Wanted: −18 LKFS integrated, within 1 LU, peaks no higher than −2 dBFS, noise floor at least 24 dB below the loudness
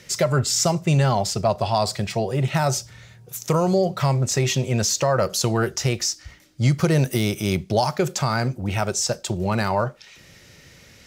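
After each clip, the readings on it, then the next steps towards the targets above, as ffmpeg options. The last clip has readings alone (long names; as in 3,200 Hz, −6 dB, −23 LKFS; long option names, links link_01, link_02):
integrated loudness −22.0 LKFS; sample peak −8.5 dBFS; target loudness −18.0 LKFS
→ -af "volume=4dB"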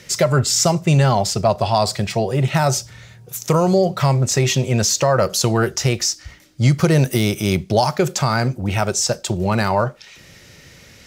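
integrated loudness −18.0 LKFS; sample peak −4.5 dBFS; background noise floor −46 dBFS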